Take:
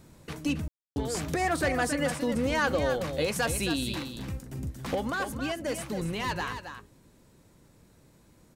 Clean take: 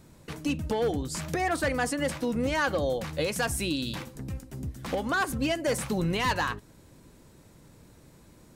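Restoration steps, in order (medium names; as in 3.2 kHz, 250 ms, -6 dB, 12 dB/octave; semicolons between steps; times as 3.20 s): room tone fill 0.68–0.96 s; inverse comb 271 ms -8.5 dB; gain correction +5 dB, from 5.10 s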